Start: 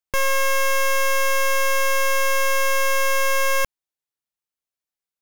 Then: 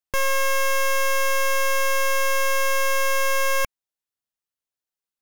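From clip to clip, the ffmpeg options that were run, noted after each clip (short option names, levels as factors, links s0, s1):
-af "bandreject=f=2300:w=16,volume=0.841"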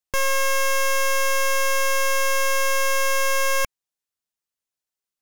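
-af "equalizer=f=6900:t=o:w=1.4:g=3"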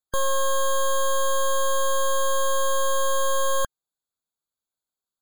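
-af "afftfilt=real='re*eq(mod(floor(b*sr/1024/1600),2),0)':imag='im*eq(mod(floor(b*sr/1024/1600),2),0)':win_size=1024:overlap=0.75"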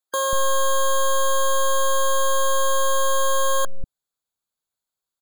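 -filter_complex "[0:a]acrossover=split=280[s0][s1];[s0]adelay=190[s2];[s2][s1]amix=inputs=2:normalize=0,volume=1.41"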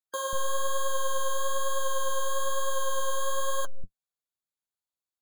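-af "flanger=delay=6.6:depth=8.1:regen=36:speed=1.1:shape=triangular,volume=0.531"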